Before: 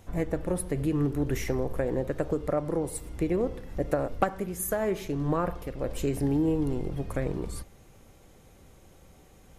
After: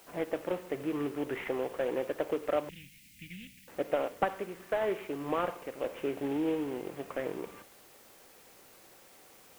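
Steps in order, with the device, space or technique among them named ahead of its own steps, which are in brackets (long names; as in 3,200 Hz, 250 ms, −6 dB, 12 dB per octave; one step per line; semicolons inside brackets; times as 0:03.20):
army field radio (band-pass filter 380–2,900 Hz; variable-slope delta modulation 16 kbit/s; white noise bed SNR 24 dB)
0:02.69–0:03.68: elliptic band-stop filter 200–2,300 Hz, stop band 40 dB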